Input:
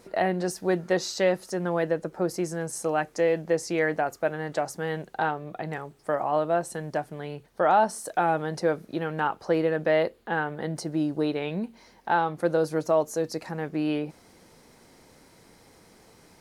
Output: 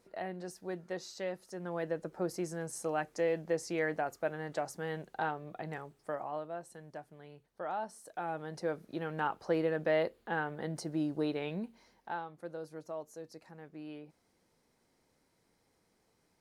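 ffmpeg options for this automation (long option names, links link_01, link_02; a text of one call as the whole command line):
ffmpeg -i in.wav -af "volume=2dB,afade=type=in:start_time=1.46:duration=0.65:silence=0.446684,afade=type=out:start_time=5.8:duration=0.7:silence=0.354813,afade=type=in:start_time=8.04:duration=1.2:silence=0.316228,afade=type=out:start_time=11.48:duration=0.81:silence=0.251189" out.wav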